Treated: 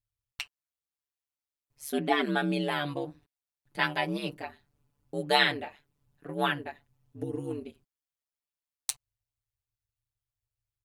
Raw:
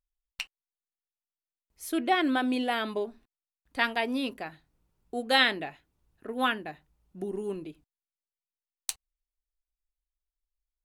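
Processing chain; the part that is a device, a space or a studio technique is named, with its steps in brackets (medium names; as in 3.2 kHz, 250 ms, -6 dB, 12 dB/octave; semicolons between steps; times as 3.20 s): ring-modulated robot voice (ring modulator 72 Hz; comb 6.9 ms, depth 73%)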